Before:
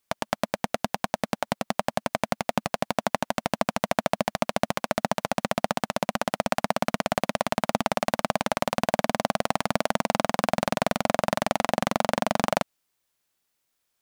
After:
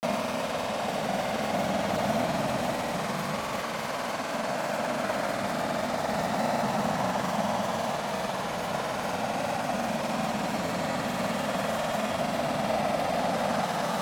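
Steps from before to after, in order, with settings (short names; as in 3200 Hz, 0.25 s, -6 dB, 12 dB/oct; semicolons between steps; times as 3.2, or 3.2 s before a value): Paulstretch 11×, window 0.25 s, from 4.45; grains, pitch spread up and down by 0 st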